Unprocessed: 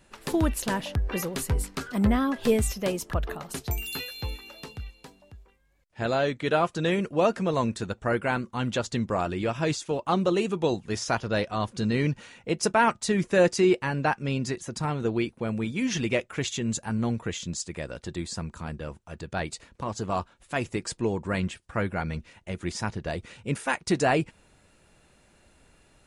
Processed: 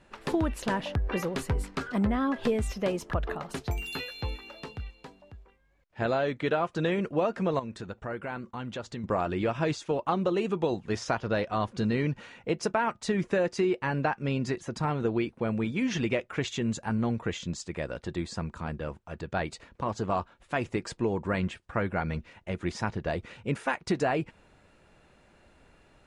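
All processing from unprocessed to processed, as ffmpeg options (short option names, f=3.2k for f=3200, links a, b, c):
-filter_complex "[0:a]asettb=1/sr,asplit=3[a][b][c];[a]atrim=end=7.594[d];[b]atrim=start=7.59:end=9.04,asetpts=PTS-STARTPTS,afade=t=in:d=0.004:c=qsin,afade=t=out:st=1.446:d=0.004:c=qsin,agate=range=-33dB:threshold=-49dB:ratio=3:release=100:detection=peak,acompressor=threshold=-38dB:ratio=2.5:attack=3.2:release=140:knee=1:detection=peak[e];[c]atrim=start=9.036[f];[d][e]acrossfade=d=0.004:c1=hsin:c2=qsin[g];[g][f]acrossfade=d=0.004:c1=qsin:c2=hsin,lowshelf=f=340:g=-4,acompressor=threshold=-26dB:ratio=6,aemphasis=mode=reproduction:type=75fm,volume=2.5dB"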